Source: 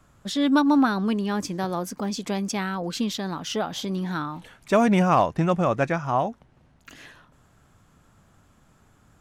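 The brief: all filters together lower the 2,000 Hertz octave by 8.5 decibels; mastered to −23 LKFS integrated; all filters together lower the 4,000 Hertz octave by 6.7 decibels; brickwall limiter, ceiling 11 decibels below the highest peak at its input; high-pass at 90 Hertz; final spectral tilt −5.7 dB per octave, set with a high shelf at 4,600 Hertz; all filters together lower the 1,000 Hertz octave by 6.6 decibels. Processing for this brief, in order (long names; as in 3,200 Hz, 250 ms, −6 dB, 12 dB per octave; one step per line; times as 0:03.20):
high-pass filter 90 Hz
parametric band 1,000 Hz −7 dB
parametric band 2,000 Hz −8 dB
parametric band 4,000 Hz −7.5 dB
high-shelf EQ 4,600 Hz +3.5 dB
level +8 dB
brickwall limiter −14.5 dBFS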